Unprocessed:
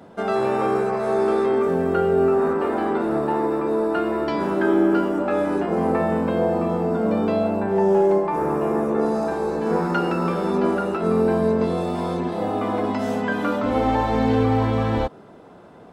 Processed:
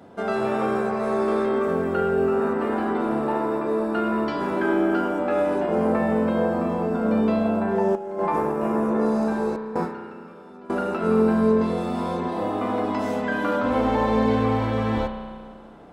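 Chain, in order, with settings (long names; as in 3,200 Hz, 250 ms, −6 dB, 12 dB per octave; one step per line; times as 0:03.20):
0:09.56–0:10.70: noise gate with hold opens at −10 dBFS
on a send at −3 dB: convolution reverb RT60 1.9 s, pre-delay 32 ms
0:07.95–0:08.67: on the sum: compressor whose output falls as the input rises −22 dBFS, ratio −0.5
level −2.5 dB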